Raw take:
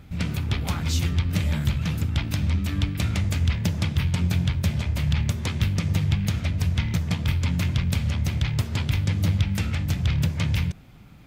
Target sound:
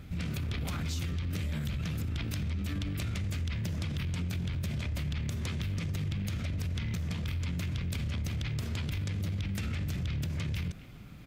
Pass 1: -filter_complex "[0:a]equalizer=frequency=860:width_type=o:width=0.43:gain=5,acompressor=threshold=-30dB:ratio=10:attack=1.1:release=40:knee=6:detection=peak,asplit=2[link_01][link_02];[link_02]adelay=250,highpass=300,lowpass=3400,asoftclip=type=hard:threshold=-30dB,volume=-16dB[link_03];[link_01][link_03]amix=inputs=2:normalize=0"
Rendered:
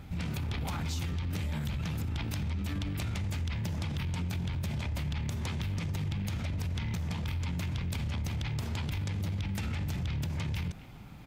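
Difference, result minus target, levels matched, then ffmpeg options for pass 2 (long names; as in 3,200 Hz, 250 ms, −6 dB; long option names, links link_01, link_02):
1,000 Hz band +5.0 dB
-filter_complex "[0:a]equalizer=frequency=860:width_type=o:width=0.43:gain=-6.5,acompressor=threshold=-30dB:ratio=10:attack=1.1:release=40:knee=6:detection=peak,asplit=2[link_01][link_02];[link_02]adelay=250,highpass=300,lowpass=3400,asoftclip=type=hard:threshold=-30dB,volume=-16dB[link_03];[link_01][link_03]amix=inputs=2:normalize=0"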